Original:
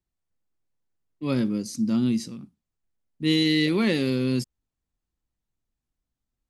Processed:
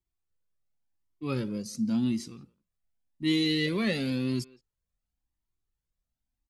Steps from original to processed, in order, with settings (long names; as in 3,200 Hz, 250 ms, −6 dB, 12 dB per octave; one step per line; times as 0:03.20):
far-end echo of a speakerphone 170 ms, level −21 dB
flanger whose copies keep moving one way rising 0.92 Hz